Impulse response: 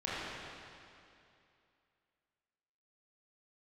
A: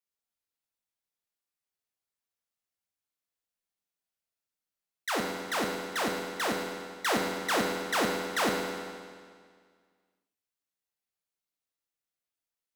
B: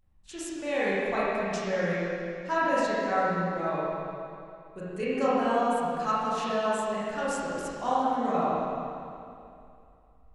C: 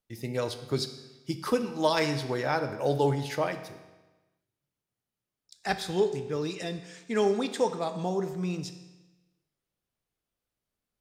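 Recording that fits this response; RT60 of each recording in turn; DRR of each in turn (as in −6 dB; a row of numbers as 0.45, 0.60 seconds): B; 1.9, 2.6, 1.2 seconds; −0.5, −10.0, 8.5 decibels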